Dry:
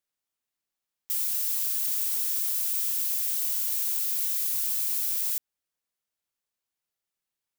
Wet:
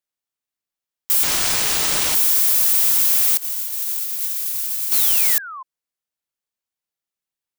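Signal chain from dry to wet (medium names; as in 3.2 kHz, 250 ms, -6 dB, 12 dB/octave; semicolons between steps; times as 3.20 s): 1.23–2.15 s: median filter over 3 samples; 3.37–4.92 s: gate -25 dBFS, range -21 dB; waveshaping leveller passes 3; 4.93–5.63 s: painted sound fall 1–4.5 kHz -37 dBFS; trim +4 dB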